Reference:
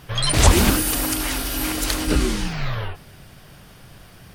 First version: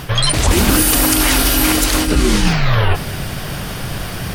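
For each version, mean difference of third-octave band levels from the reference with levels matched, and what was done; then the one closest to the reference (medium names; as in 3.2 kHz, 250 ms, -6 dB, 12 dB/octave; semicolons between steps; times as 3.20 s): 7.0 dB: reverse; compression 20:1, threshold -30 dBFS, peak gain reduction 23.5 dB; reverse; loudness maximiser +22 dB; trim -1 dB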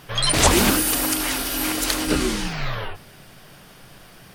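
1.5 dB: peaking EQ 61 Hz -10 dB 2.2 oct; hum notches 50/100 Hz; trim +1.5 dB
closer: second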